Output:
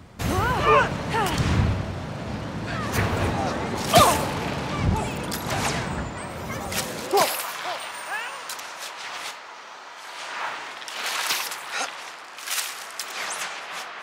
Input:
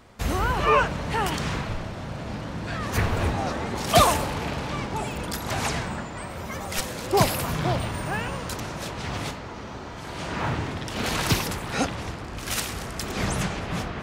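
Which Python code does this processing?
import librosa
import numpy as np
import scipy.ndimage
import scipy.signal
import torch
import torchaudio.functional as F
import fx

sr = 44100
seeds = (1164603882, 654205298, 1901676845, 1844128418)

y = fx.dmg_wind(x, sr, seeds[0], corner_hz=81.0, level_db=-30.0)
y = fx.filter_sweep_highpass(y, sr, from_hz=95.0, to_hz=930.0, start_s=6.77, end_s=7.43, q=0.73)
y = F.gain(torch.from_numpy(y), 2.0).numpy()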